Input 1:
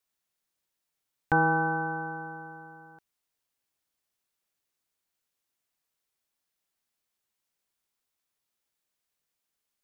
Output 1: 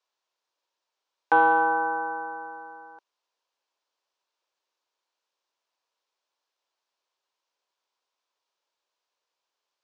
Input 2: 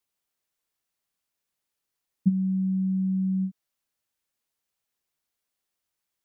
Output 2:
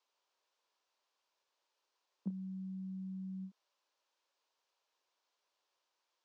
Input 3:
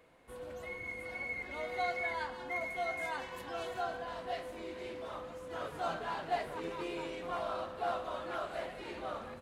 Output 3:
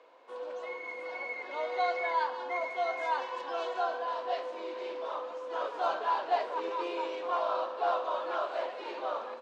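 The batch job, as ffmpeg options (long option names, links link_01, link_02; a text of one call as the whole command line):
ffmpeg -i in.wav -af "highpass=frequency=350:width=0.5412,highpass=frequency=350:width=1.3066,equalizer=frequency=550:width_type=q:width=4:gain=4,equalizer=frequency=980:width_type=q:width=4:gain=8,equalizer=frequency=2000:width_type=q:width=4:gain=-5,lowpass=frequency=5900:width=0.5412,lowpass=frequency=5900:width=1.3066,acontrast=81,volume=-3.5dB" out.wav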